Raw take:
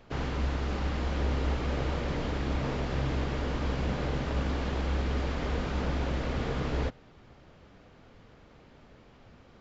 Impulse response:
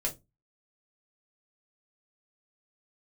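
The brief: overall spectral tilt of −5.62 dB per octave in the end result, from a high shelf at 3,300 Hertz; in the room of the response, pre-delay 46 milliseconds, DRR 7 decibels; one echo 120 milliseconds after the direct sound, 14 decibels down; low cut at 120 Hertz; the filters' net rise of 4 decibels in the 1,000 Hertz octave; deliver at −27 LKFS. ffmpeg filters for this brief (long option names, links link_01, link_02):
-filter_complex "[0:a]highpass=120,equalizer=frequency=1000:width_type=o:gain=6,highshelf=frequency=3300:gain=-8.5,aecho=1:1:120:0.2,asplit=2[link_01][link_02];[1:a]atrim=start_sample=2205,adelay=46[link_03];[link_02][link_03]afir=irnorm=-1:irlink=0,volume=-11dB[link_04];[link_01][link_04]amix=inputs=2:normalize=0,volume=5.5dB"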